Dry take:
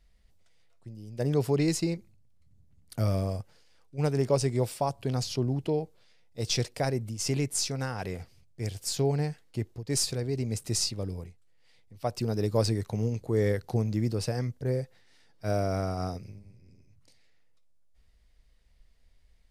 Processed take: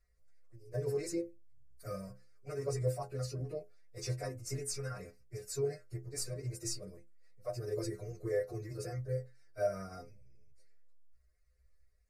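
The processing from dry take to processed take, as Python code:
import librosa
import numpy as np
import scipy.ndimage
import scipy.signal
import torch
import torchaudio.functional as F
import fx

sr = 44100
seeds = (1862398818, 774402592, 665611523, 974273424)

y = fx.fixed_phaser(x, sr, hz=870.0, stages=6)
y = fx.stiff_resonator(y, sr, f0_hz=62.0, decay_s=0.5, stiffness=0.008)
y = fx.stretch_vocoder_free(y, sr, factor=0.62)
y = y * 10.0 ** (6.5 / 20.0)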